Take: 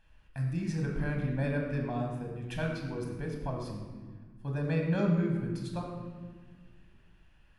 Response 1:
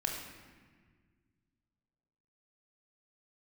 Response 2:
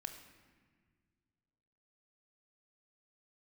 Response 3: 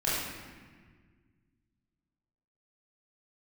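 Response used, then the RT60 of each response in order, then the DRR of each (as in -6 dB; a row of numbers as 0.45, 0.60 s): 1; 1.7, 1.7, 1.6 s; 0.5, 6.5, -9.0 dB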